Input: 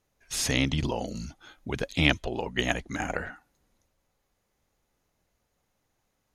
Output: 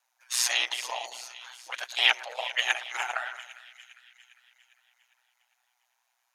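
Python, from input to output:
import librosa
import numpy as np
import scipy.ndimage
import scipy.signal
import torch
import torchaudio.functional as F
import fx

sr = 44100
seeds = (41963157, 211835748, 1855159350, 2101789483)

p1 = scipy.signal.sosfilt(scipy.signal.butter(4, 780.0, 'highpass', fs=sr, output='sos'), x)
p2 = fx.pitch_keep_formants(p1, sr, semitones=6.5)
p3 = p2 + fx.echo_split(p2, sr, split_hz=1800.0, low_ms=111, high_ms=403, feedback_pct=52, wet_db=-14.0, dry=0)
p4 = p3 * np.sin(2.0 * np.pi * 61.0 * np.arange(len(p3)) / sr)
y = p4 * librosa.db_to_amplitude(7.0)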